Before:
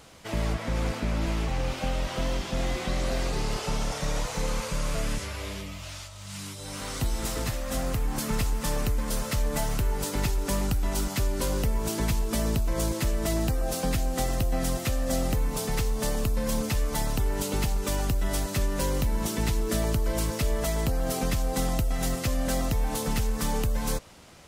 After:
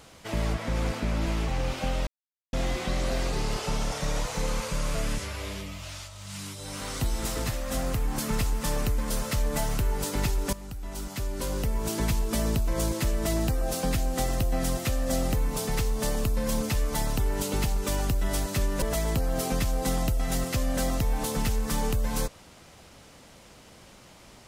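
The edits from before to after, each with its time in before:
2.07–2.53 mute
10.53–12 fade in, from -17 dB
18.82–20.53 cut

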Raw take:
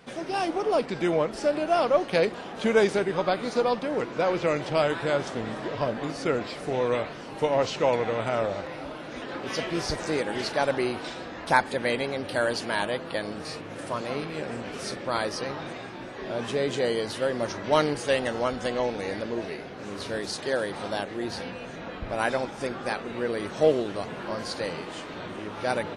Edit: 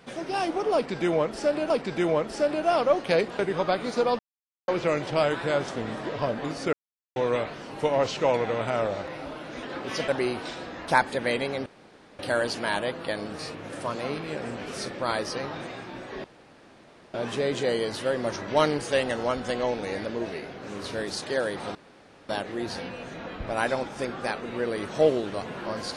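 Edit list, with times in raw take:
0.74–1.7 loop, 2 plays
2.43–2.98 cut
3.78–4.27 mute
6.32–6.75 mute
9.67–10.67 cut
12.25 insert room tone 0.53 s
16.3 insert room tone 0.90 s
20.91 insert room tone 0.54 s

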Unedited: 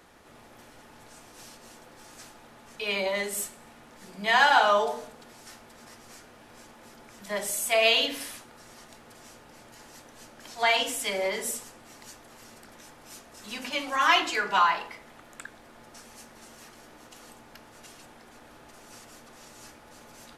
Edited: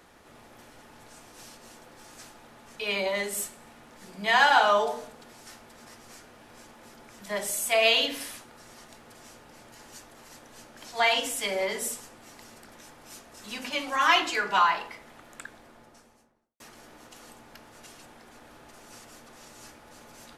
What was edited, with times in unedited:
12.05–12.42 move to 9.92
15.45–16.6 studio fade out

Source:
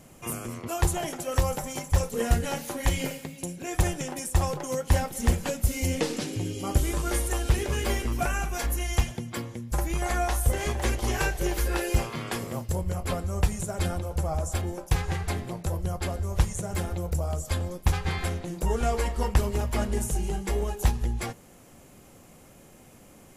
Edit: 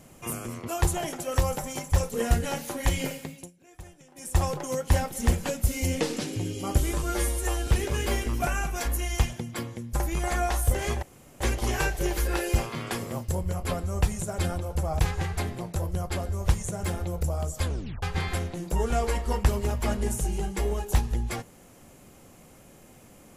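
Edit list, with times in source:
3.3–4.35 dip -21 dB, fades 0.21 s
7.03–7.46 stretch 1.5×
10.81 insert room tone 0.38 s
14.4–14.9 cut
17.56 tape stop 0.37 s

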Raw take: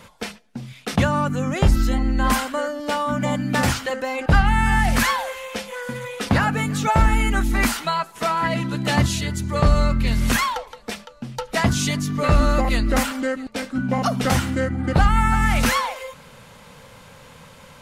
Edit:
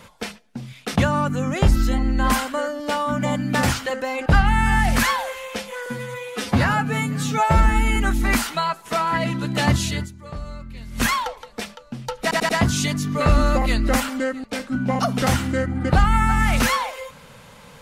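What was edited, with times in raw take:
5.86–7.26 stretch 1.5×
9.33–10.32 dip -16.5 dB, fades 0.31 s exponential
11.52 stutter 0.09 s, 4 plays

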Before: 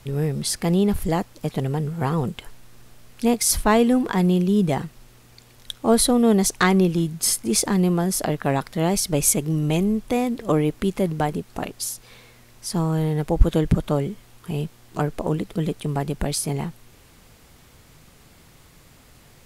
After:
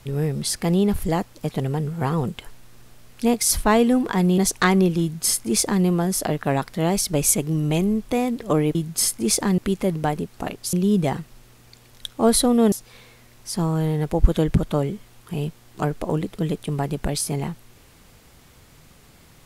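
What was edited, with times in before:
4.38–6.37 move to 11.89
7–7.83 copy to 10.74

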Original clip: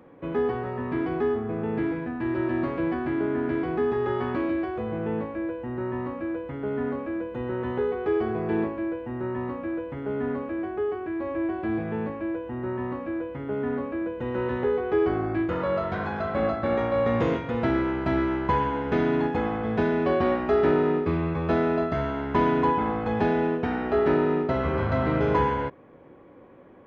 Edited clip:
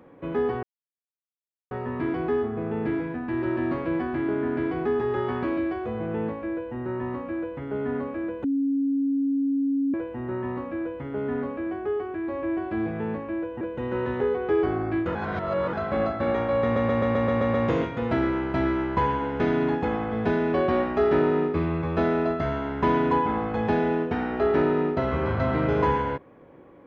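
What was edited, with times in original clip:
0.63 insert silence 1.08 s
7.36–8.86 bleep 276 Hz -21 dBFS
12.53–14.04 cut
15.58–16.16 reverse
17.06 stutter 0.13 s, 8 plays

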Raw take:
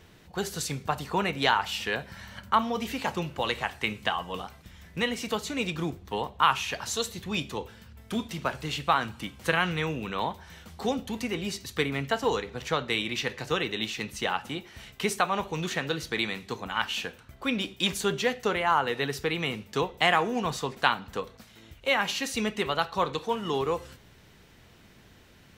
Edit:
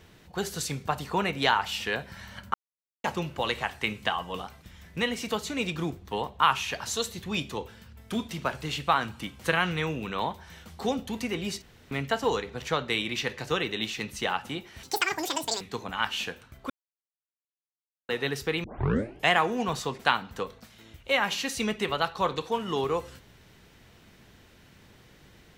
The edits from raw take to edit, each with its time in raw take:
2.54–3.04 mute
11.62–11.91 room tone
14.83–16.38 speed 199%
17.47–18.86 mute
19.41 tape start 0.66 s

